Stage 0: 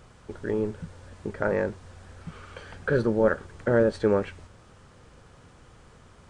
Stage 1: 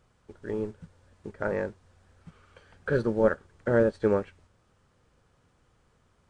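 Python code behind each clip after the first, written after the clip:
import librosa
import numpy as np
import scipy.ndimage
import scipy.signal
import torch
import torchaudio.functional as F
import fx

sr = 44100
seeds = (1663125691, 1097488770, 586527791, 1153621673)

y = fx.upward_expand(x, sr, threshold_db=-44.0, expansion=1.5)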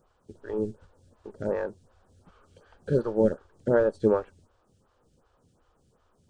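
y = fx.peak_eq(x, sr, hz=2100.0, db=-11.0, octaves=0.71)
y = fx.stagger_phaser(y, sr, hz=2.7)
y = y * 10.0 ** (4.0 / 20.0)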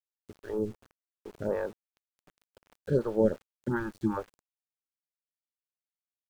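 y = fx.spec_box(x, sr, start_s=3.68, length_s=0.49, low_hz=370.0, high_hz=780.0, gain_db=-28)
y = fx.dmg_buzz(y, sr, base_hz=100.0, harmonics=5, level_db=-62.0, tilt_db=-1, odd_only=False)
y = np.where(np.abs(y) >= 10.0 ** (-47.5 / 20.0), y, 0.0)
y = y * 10.0 ** (-2.0 / 20.0)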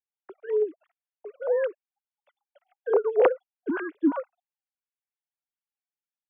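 y = fx.sine_speech(x, sr)
y = fx.vibrato(y, sr, rate_hz=0.54, depth_cents=26.0)
y = y * 10.0 ** (5.0 / 20.0)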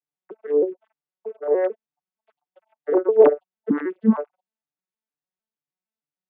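y = fx.vocoder_arp(x, sr, chord='major triad', root=50, every_ms=154)
y = y * 10.0 ** (6.5 / 20.0)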